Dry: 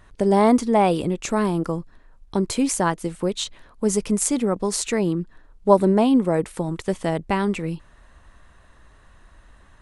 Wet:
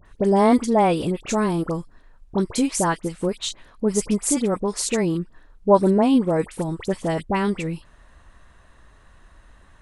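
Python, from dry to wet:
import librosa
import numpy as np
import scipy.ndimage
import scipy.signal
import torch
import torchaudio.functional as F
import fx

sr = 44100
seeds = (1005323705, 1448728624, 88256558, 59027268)

y = fx.dispersion(x, sr, late='highs', ms=57.0, hz=1700.0)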